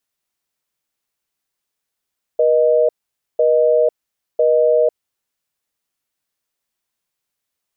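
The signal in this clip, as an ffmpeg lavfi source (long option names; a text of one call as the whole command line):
ffmpeg -f lavfi -i "aevalsrc='0.211*(sin(2*PI*480*t)+sin(2*PI*620*t))*clip(min(mod(t,1),0.5-mod(t,1))/0.005,0,1)':duration=2.55:sample_rate=44100" out.wav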